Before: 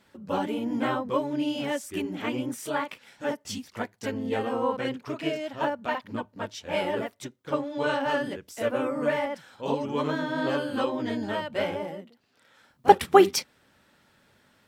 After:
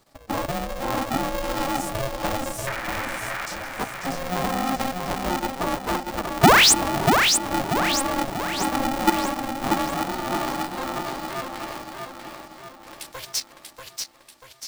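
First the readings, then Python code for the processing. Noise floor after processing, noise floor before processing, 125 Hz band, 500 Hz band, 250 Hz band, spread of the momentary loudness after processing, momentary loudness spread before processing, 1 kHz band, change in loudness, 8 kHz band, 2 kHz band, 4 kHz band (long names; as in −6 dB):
−50 dBFS, −64 dBFS, +7.5 dB, −2.0 dB, +2.0 dB, 18 LU, 10 LU, +4.5 dB, +4.5 dB, +15.5 dB, +8.0 dB, +12.0 dB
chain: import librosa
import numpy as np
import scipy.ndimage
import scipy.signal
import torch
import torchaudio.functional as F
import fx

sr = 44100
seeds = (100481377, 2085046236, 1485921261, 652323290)

y = fx.band_shelf(x, sr, hz=2000.0, db=-13.0, octaves=1.7)
y = fx.doubler(y, sr, ms=15.0, db=-13.5)
y = fx.level_steps(y, sr, step_db=11)
y = fx.spec_paint(y, sr, seeds[0], shape='noise', start_s=2.67, length_s=0.79, low_hz=900.0, high_hz=2200.0, level_db=-13.0)
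y = fx.over_compress(y, sr, threshold_db=-22.0, ratio=-0.5)
y = fx.low_shelf(y, sr, hz=310.0, db=-8.5)
y = fx.spec_paint(y, sr, seeds[1], shape='rise', start_s=6.43, length_s=0.31, low_hz=360.0, high_hz=9700.0, level_db=-17.0)
y = fx.filter_sweep_highpass(y, sr, from_hz=350.0, to_hz=2100.0, start_s=9.09, end_s=12.5, q=1.5)
y = fx.echo_feedback(y, sr, ms=638, feedback_pct=49, wet_db=-4.5)
y = y * np.sign(np.sin(2.0 * np.pi * 270.0 * np.arange(len(y)) / sr))
y = y * librosa.db_to_amplitude(3.0)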